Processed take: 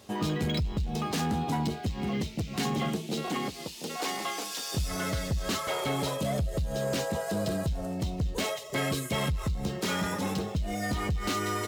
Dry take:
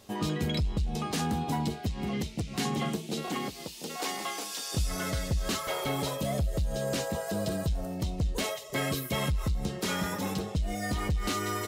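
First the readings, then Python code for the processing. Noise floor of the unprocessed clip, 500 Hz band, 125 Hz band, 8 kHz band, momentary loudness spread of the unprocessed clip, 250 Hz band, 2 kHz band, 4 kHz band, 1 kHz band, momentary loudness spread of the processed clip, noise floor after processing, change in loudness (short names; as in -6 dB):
-43 dBFS, +1.5 dB, +0.5 dB, -0.5 dB, 4 LU, +1.0 dB, +1.5 dB, +0.5 dB, +1.5 dB, 3 LU, -41 dBFS, +0.5 dB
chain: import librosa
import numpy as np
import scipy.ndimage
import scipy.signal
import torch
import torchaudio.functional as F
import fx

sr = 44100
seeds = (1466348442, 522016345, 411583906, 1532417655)

y = scipy.signal.sosfilt(scipy.signal.butter(2, 57.0, 'highpass', fs=sr, output='sos'), x)
y = 10.0 ** (-23.5 / 20.0) * np.tanh(y / 10.0 ** (-23.5 / 20.0))
y = np.interp(np.arange(len(y)), np.arange(len(y))[::2], y[::2])
y = F.gain(torch.from_numpy(y), 2.5).numpy()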